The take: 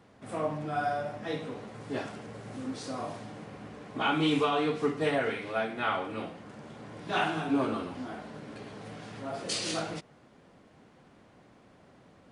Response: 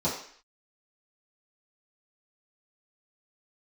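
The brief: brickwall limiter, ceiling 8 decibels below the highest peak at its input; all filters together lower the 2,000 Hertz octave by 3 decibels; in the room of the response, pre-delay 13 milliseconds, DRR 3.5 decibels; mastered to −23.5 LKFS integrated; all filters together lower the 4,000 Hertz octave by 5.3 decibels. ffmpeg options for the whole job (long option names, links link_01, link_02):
-filter_complex "[0:a]equalizer=frequency=2000:width_type=o:gain=-3,equalizer=frequency=4000:width_type=o:gain=-6,alimiter=level_in=1dB:limit=-24dB:level=0:latency=1,volume=-1dB,asplit=2[link_01][link_02];[1:a]atrim=start_sample=2205,adelay=13[link_03];[link_02][link_03]afir=irnorm=-1:irlink=0,volume=-13.5dB[link_04];[link_01][link_04]amix=inputs=2:normalize=0,volume=9.5dB"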